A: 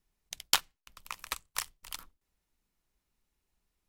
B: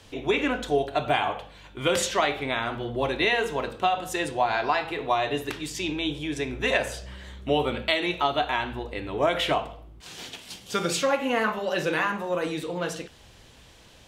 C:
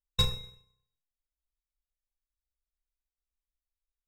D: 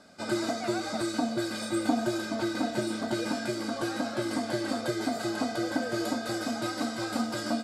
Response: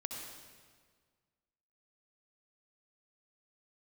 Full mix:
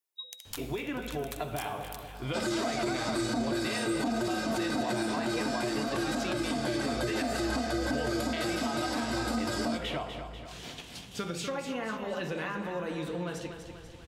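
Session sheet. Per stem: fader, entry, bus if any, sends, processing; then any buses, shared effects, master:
-12.0 dB, 0.00 s, send -5 dB, echo send -16 dB, HPF 320 Hz 24 dB/oct; high shelf 7500 Hz +11 dB; limiter -11.5 dBFS, peak gain reduction 10.5 dB
-4.0 dB, 0.45 s, no send, echo send -8.5 dB, tone controls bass +7 dB, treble -2 dB; compressor, threshold -28 dBFS, peak gain reduction 10.5 dB
-6.0 dB, 0.00 s, no send, no echo send, compressor, threshold -30 dBFS, peak gain reduction 9.5 dB; HPF 240 Hz 24 dB/oct; loudest bins only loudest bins 4
+2.5 dB, 2.15 s, no send, echo send -20.5 dB, dry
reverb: on, RT60 1.7 s, pre-delay 59 ms
echo: feedback echo 0.245 s, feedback 53%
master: limiter -22 dBFS, peak gain reduction 12 dB

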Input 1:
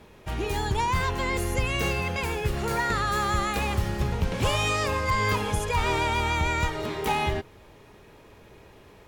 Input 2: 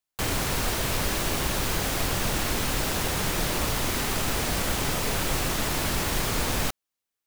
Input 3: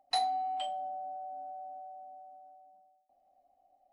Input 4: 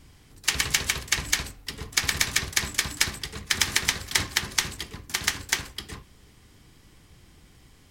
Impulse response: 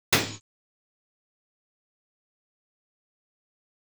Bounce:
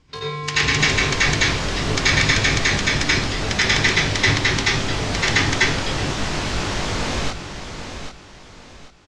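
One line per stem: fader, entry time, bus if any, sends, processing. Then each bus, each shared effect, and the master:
off
+1.5 dB, 0.60 s, no send, echo send -9 dB, chorus 0.34 Hz, delay 20 ms, depth 3 ms
-4.0 dB, 0.00 s, send -16 dB, no echo send, polarity switched at an audio rate 300 Hz
-5.5 dB, 0.00 s, send -10 dB, no echo send, dry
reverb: on, pre-delay 77 ms
echo: feedback echo 0.788 s, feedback 32%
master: LPF 6600 Hz 24 dB/oct; AGC gain up to 5 dB

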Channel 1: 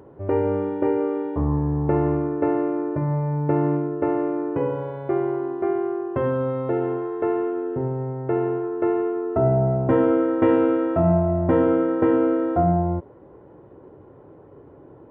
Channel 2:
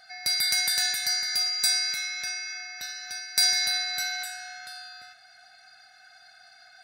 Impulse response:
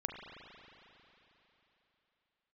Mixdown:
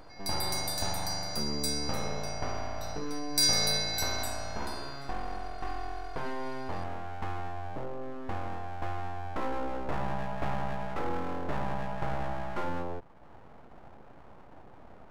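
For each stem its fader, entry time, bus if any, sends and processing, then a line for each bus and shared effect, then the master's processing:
-2.5 dB, 0.00 s, no send, compressor 1.5:1, threshold -40 dBFS, peak gain reduction 9.5 dB; full-wave rectifier
3.23 s -18.5 dB -> 3.46 s -10.5 dB, 0.00 s, no send, high shelf 2800 Hz +11 dB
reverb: off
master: dry

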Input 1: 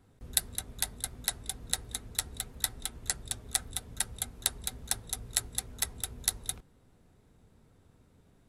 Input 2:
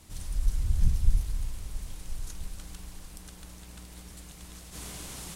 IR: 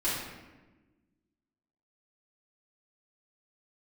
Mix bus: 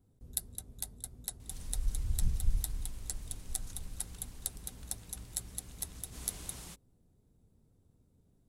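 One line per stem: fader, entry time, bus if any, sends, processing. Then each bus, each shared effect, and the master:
-4.5 dB, 0.00 s, no send, bell 1800 Hz -15 dB 2.8 oct
-7.0 dB, 1.40 s, no send, dry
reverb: off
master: dry

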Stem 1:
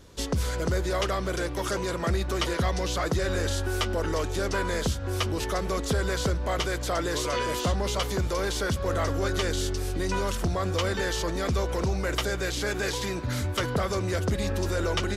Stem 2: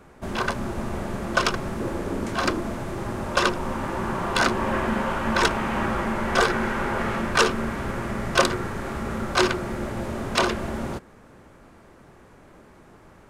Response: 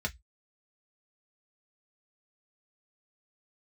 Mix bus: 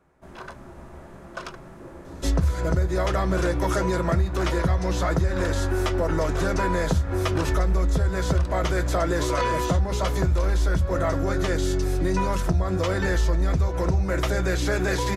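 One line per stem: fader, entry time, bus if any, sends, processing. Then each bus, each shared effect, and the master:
+1.0 dB, 2.05 s, send -6 dB, low shelf 230 Hz +4.5 dB; vocal rider 0.5 s
-14.5 dB, 0.00 s, send -12.5 dB, dry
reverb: on, RT60 0.10 s, pre-delay 3 ms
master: compressor, threshold -18 dBFS, peak gain reduction 8 dB

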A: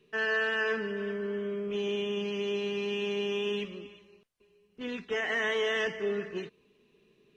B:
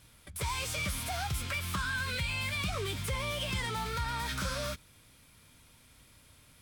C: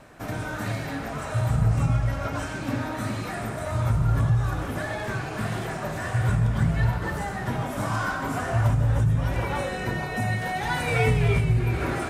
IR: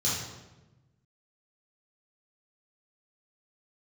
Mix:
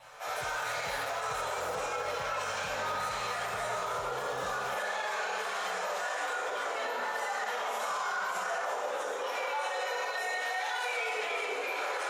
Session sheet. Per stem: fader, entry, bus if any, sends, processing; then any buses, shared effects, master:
-19.0 dB, 2.00 s, send -10 dB, dry
-11.5 dB, 0.00 s, no send, comb 6.9 ms, depth 76%; overloaded stage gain 30.5 dB
+1.5 dB, 0.00 s, send -5 dB, octaver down 1 oct, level +4 dB; elliptic high-pass 500 Hz, stop band 70 dB; ensemble effect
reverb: on, RT60 1.1 s, pre-delay 3 ms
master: limiter -25 dBFS, peak gain reduction 11.5 dB

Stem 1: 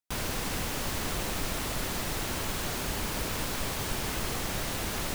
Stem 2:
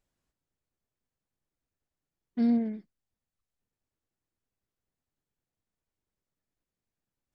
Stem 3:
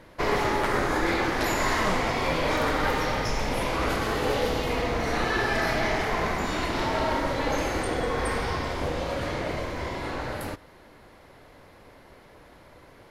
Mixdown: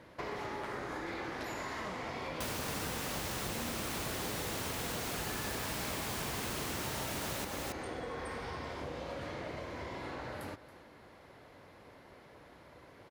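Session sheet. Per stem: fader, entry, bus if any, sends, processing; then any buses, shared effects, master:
0.0 dB, 2.30 s, no send, echo send -5 dB, dry
-15.0 dB, 1.15 s, no send, no echo send, dry
-4.5 dB, 0.00 s, no send, echo send -17 dB, high shelf 8600 Hz -5.5 dB; compressor 2.5:1, threshold -36 dBFS, peak gain reduction 10.5 dB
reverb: off
echo: echo 0.276 s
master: HPF 67 Hz; compressor 5:1, threshold -35 dBFS, peak gain reduction 7.5 dB

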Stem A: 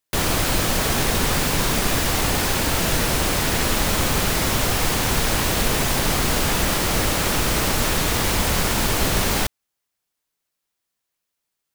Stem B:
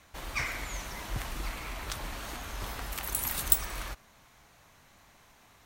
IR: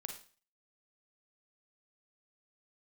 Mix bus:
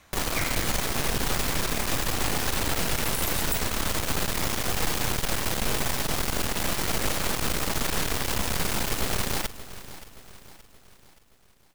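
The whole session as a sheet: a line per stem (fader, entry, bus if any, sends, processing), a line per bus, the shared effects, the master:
-1.5 dB, 0.00 s, no send, echo send -17.5 dB, half-wave rectifier
+2.5 dB, 0.00 s, no send, no echo send, dry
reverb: off
echo: feedback echo 0.574 s, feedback 47%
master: limiter -13.5 dBFS, peak gain reduction 10 dB

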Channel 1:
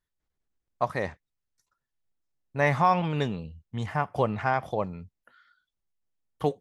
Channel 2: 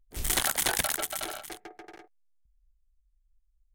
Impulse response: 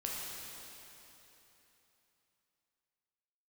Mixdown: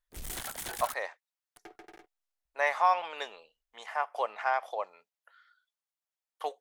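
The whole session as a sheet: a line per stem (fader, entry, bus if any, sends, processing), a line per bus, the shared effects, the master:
-2.0 dB, 0.00 s, no send, HPF 590 Hz 24 dB/oct
-16.0 dB, 0.00 s, muted 0.94–1.56, no send, sample leveller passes 3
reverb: off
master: dry

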